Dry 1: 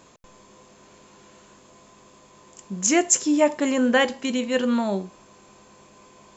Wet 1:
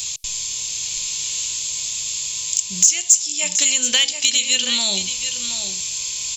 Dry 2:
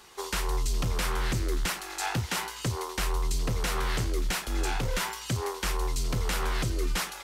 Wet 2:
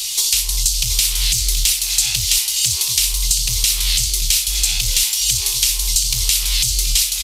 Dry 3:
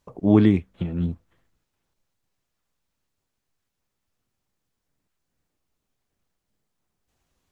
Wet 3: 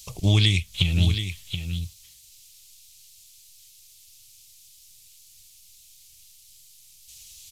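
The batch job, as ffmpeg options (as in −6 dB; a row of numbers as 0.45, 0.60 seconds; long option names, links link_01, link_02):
-filter_complex "[0:a]firequalizer=gain_entry='entry(130,0);entry(210,-15);entry(660,-9);entry(2300,2);entry(4000,5)':delay=0.05:min_phase=1,aresample=32000,aresample=44100,aexciter=amount=12.4:drive=2:freq=2400,lowshelf=frequency=120:gain=10,acompressor=threshold=-23dB:ratio=4,asplit=2[link_01][link_02];[link_02]aecho=0:1:726:0.355[link_03];[link_01][link_03]amix=inputs=2:normalize=0,acontrast=41,volume=1dB"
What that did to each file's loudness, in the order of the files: +3.5, +15.5, −2.5 LU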